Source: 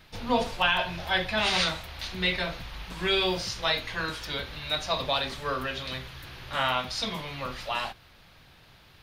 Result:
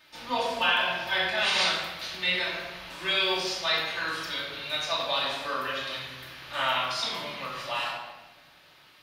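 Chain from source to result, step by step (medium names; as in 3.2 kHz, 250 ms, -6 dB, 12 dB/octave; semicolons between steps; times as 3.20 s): high-pass 740 Hz 6 dB/octave; simulated room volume 720 m³, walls mixed, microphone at 2.6 m; trim -3.5 dB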